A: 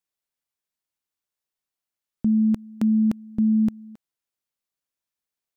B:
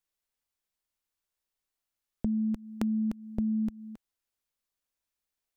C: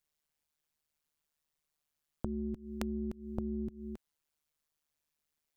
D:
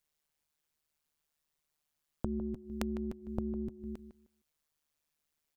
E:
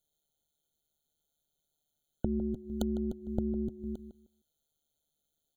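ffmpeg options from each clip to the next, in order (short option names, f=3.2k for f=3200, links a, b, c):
-af "lowshelf=f=100:g=11.5,acompressor=threshold=-25dB:ratio=6,equalizer=f=130:w=1:g=-6"
-af "tremolo=f=150:d=0.974,acompressor=threshold=-39dB:ratio=6,volume=5.5dB"
-filter_complex "[0:a]asplit=2[a][b];[b]adelay=154,lowpass=f=2k:p=1,volume=-11dB,asplit=2[c][d];[d]adelay=154,lowpass=f=2k:p=1,volume=0.2,asplit=2[e][f];[f]adelay=154,lowpass=f=2k:p=1,volume=0.2[g];[a][c][e][g]amix=inputs=4:normalize=0,volume=1.5dB"
-af "asuperstop=centerf=1100:order=4:qfactor=1.5,afftfilt=real='re*eq(mod(floor(b*sr/1024/1500),2),0)':imag='im*eq(mod(floor(b*sr/1024/1500),2),0)':win_size=1024:overlap=0.75,volume=4dB"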